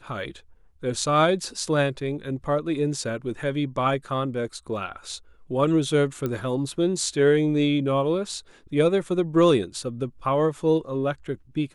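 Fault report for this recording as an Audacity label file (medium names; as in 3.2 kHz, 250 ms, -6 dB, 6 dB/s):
6.260000	6.260000	pop -15 dBFS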